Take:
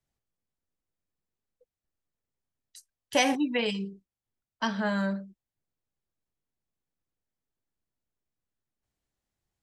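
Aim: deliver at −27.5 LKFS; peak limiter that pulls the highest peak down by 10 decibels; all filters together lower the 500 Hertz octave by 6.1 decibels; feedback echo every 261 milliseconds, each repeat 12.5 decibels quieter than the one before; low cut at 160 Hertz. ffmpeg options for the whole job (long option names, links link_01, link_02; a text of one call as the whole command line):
ffmpeg -i in.wav -af "highpass=160,equalizer=frequency=500:width_type=o:gain=-7,alimiter=limit=-22.5dB:level=0:latency=1,aecho=1:1:261|522|783:0.237|0.0569|0.0137,volume=5.5dB" out.wav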